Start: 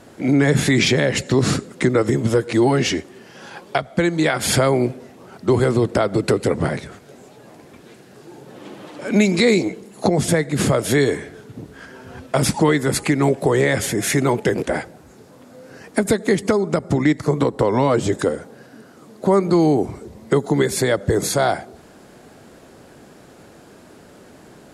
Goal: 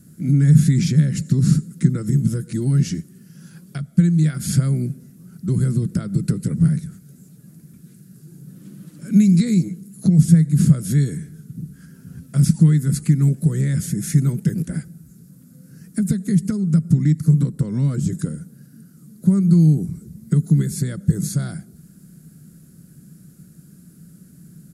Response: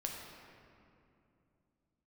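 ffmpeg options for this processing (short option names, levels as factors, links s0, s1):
-filter_complex "[0:a]acrossover=split=7600[s0][s1];[s1]acompressor=threshold=0.00794:ratio=4:attack=1:release=60[s2];[s0][s2]amix=inputs=2:normalize=0,firequalizer=gain_entry='entry(110,0);entry(160,15);entry(240,-2);entry(410,-16);entry(840,-29);entry(1400,-12);entry(2000,-16);entry(3200,-16);entry(4700,-7);entry(11000,9)':delay=0.05:min_phase=1,volume=0.794"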